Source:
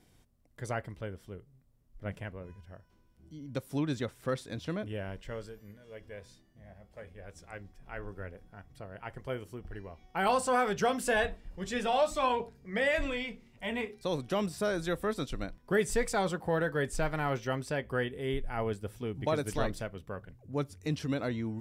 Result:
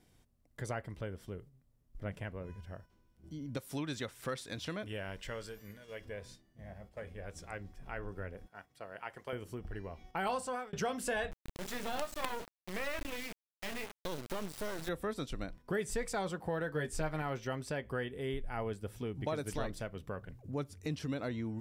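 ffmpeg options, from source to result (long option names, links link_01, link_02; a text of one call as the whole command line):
ffmpeg -i in.wav -filter_complex "[0:a]asettb=1/sr,asplit=3[link_01][link_02][link_03];[link_01]atrim=end=3.574[link_04];[link_02]atrim=start=3.57:end=6.05,asetpts=PTS-STARTPTS,afade=type=in:duration=0.004:curve=qsin,afade=type=out:start_time=2.476:duration=0.004:curve=qsin,tiltshelf=frequency=880:gain=-4.5[link_05];[link_03]atrim=start=6.046[link_06];[link_04][link_05]acrossfade=duration=0.004:curve1=hsin:curve2=qsin[link_07];[link_07][link_06]acrossfade=duration=0.004:curve1=qsin:curve2=hsin,asettb=1/sr,asplit=3[link_08][link_09][link_10];[link_08]atrim=end=8.464[link_11];[link_09]atrim=start=8.46:end=9.33,asetpts=PTS-STARTPTS,afade=type=in:duration=0.004:curve=qsin,afade=type=out:start_time=0.866:duration=0.004:curve=qsin,highpass=frequency=660:poles=1[link_12];[link_10]atrim=start=9.326[link_13];[link_11][link_12]acrossfade=duration=0.004:curve1=hsin:curve2=qsin[link_14];[link_14][link_13]acrossfade=duration=0.004:curve1=qsin:curve2=hsin,asettb=1/sr,asplit=3[link_15][link_16][link_17];[link_15]atrim=end=11.314[link_18];[link_16]atrim=start=11.31:end=14.89,asetpts=PTS-STARTPTS,afade=type=in:duration=0.004:curve=qsin,afade=type=out:start_time=3.576:duration=0.004:curve=qsin,acrusher=bits=4:dc=4:mix=0:aa=0.000001[link_19];[link_17]atrim=start=14.886[link_20];[link_18][link_19]acrossfade=duration=0.004:curve1=hsin:curve2=qsin[link_21];[link_21][link_20]acrossfade=duration=0.004:curve1=qsin:curve2=hsin,asettb=1/sr,asplit=3[link_22][link_23][link_24];[link_22]atrim=end=16.734[link_25];[link_23]atrim=start=16.73:end=17.22,asetpts=PTS-STARTPTS,afade=type=in:duration=0.004:curve=qsin,afade=type=out:start_time=0.486:duration=0.004:curve=qsin,asplit=2[link_26][link_27];[link_27]adelay=13,volume=-3dB[link_28];[link_26][link_28]amix=inputs=2:normalize=0,atrim=end_sample=21609[link_29];[link_24]atrim=start=17.216[link_30];[link_25][link_29]acrossfade=duration=0.004:curve1=hsin:curve2=qsin[link_31];[link_31][link_30]acrossfade=duration=0.004:curve1=qsin:curve2=hsin,asplit=2[link_32][link_33];[link_32]atrim=end=10.73,asetpts=PTS-STARTPTS,afade=type=out:start_time=10.33:duration=0.4[link_34];[link_33]atrim=start=10.73,asetpts=PTS-STARTPTS,afade=type=in:duration=0.004:curve=hsin[link_35];[link_34][link_35]concat=n=2:v=0:a=1,acompressor=threshold=-45dB:ratio=2,agate=range=-7dB:threshold=-57dB:ratio=16:detection=peak,volume=4dB" out.wav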